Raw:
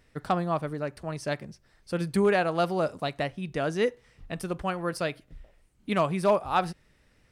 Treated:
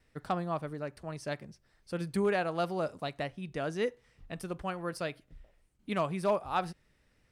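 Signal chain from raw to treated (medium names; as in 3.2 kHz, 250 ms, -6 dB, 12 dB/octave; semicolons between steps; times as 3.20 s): gate with hold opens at -59 dBFS; trim -6 dB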